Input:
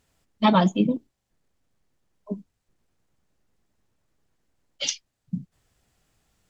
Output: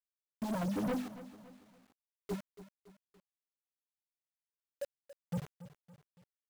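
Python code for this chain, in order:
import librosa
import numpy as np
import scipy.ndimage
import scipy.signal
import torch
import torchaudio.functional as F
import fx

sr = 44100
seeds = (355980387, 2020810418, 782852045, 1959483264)

y = scipy.signal.sosfilt(scipy.signal.butter(6, 910.0, 'lowpass', fs=sr, output='sos'), x)
y = fx.noise_reduce_blind(y, sr, reduce_db=26)
y = scipy.signal.sosfilt(scipy.signal.butter(2, 57.0, 'highpass', fs=sr, output='sos'), y)
y = fx.dereverb_blind(y, sr, rt60_s=1.5)
y = fx.low_shelf(y, sr, hz=150.0, db=4.0)
y = fx.hum_notches(y, sr, base_hz=50, count=5)
y = fx.over_compress(y, sr, threshold_db=-24.0, ratio=-0.5)
y = fx.comb_fb(y, sr, f0_hz=250.0, decay_s=0.16, harmonics='all', damping=0.0, mix_pct=40)
y = fx.quant_dither(y, sr, seeds[0], bits=8, dither='none')
y = np.clip(y, -10.0 ** (-34.0 / 20.0), 10.0 ** (-34.0 / 20.0))
y = fx.echo_crushed(y, sr, ms=281, feedback_pct=55, bits=9, wet_db=-15.0)
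y = y * librosa.db_to_amplitude(2.0)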